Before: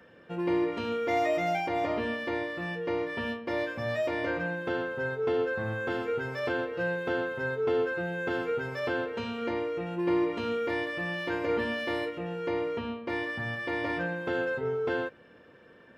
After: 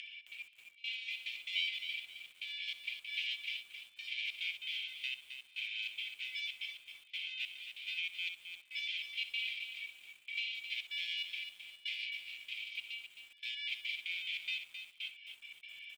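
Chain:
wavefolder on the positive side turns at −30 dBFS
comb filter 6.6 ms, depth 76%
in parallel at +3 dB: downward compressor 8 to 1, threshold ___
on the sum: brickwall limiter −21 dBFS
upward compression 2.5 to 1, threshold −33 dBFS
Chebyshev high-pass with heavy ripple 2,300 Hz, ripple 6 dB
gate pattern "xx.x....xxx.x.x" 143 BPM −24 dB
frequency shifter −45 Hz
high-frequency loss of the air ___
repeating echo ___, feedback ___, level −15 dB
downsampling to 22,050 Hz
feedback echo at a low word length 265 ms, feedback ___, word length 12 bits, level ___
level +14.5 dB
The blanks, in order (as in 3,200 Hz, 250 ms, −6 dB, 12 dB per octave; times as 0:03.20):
−36 dBFS, 380 metres, 64 ms, 18%, 35%, −8 dB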